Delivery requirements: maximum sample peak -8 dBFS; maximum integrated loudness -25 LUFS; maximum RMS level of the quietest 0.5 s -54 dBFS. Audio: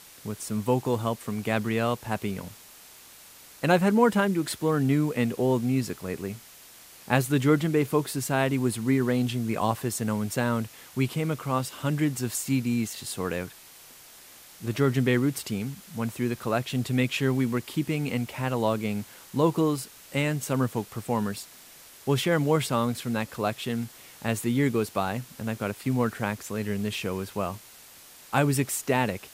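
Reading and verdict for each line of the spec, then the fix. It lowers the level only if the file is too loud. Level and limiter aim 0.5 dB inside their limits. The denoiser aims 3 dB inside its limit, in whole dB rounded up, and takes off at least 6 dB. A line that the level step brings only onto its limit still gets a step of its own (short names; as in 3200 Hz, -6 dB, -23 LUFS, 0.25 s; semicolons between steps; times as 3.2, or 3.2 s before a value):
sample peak -4.5 dBFS: fail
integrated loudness -27.5 LUFS: OK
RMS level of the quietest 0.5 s -50 dBFS: fail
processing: denoiser 7 dB, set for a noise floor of -50 dBFS; limiter -8.5 dBFS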